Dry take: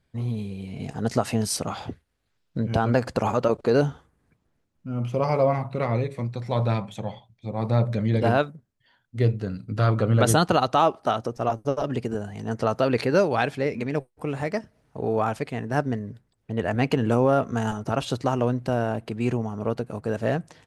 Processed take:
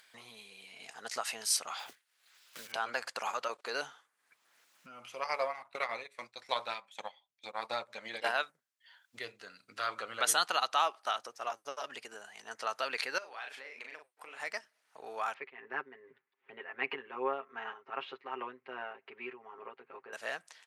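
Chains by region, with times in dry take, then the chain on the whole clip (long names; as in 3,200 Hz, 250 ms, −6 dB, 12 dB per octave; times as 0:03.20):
0:01.79–0:02.74: one scale factor per block 5 bits + multiband upward and downward compressor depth 40%
0:05.21–0:08.37: transient designer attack +11 dB, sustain −10 dB + parametric band 66 Hz −13 dB 1 octave
0:13.18–0:14.40: bass and treble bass −6 dB, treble −6 dB + double-tracking delay 38 ms −5 dB + downward compressor 8 to 1, threshold −30 dBFS
0:15.34–0:20.13: comb filter 7.5 ms, depth 87% + amplitude tremolo 2.6 Hz, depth 64% + loudspeaker in its box 150–2,400 Hz, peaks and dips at 160 Hz +4 dB, 390 Hz +10 dB, 630 Hz −9 dB, 1,500 Hz −5 dB
whole clip: high-pass filter 1,400 Hz 12 dB per octave; upward compression, threshold −47 dBFS; level −1.5 dB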